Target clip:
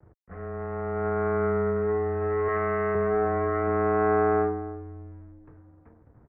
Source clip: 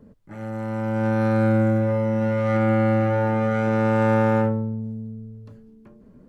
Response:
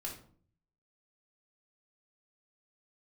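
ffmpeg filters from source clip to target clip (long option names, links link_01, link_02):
-filter_complex "[0:a]asettb=1/sr,asplit=3[link_01][link_02][link_03];[link_01]atrim=end=2.484[link_04];[link_02]atrim=start=2.48:end=2.95,asetpts=PTS-STARTPTS,afade=type=in:duration=0.004:curve=qsin,afade=type=out:start_time=0.466:duration=0.004:curve=qsin,aemphasis=mode=production:type=riaa[link_05];[link_03]atrim=start=2.946[link_06];[link_04][link_05]acrossfade=duration=0.004:curve1=hsin:curve2=qsin[link_07];[link_07][link_06]acrossfade=duration=0.004:curve1=qsin:curve2=hsin,acrossover=split=350[link_08][link_09];[link_08]acompressor=threshold=-36dB:ratio=6[link_10];[link_10][link_09]amix=inputs=2:normalize=0,aeval=exprs='sgn(val(0))*max(abs(val(0))-0.00211,0)':channel_layout=same,asplit=2[link_11][link_12];[link_12]adelay=305,lowpass=frequency=1100:poles=1,volume=-14.5dB,asplit=2[link_13][link_14];[link_14]adelay=305,lowpass=frequency=1100:poles=1,volume=0.23[link_15];[link_11][link_13][link_15]amix=inputs=3:normalize=0,highpass=frequency=160:width_type=q:width=0.5412,highpass=frequency=160:width_type=q:width=1.307,lowpass=frequency=2100:width_type=q:width=0.5176,lowpass=frequency=2100:width_type=q:width=0.7071,lowpass=frequency=2100:width_type=q:width=1.932,afreqshift=-130"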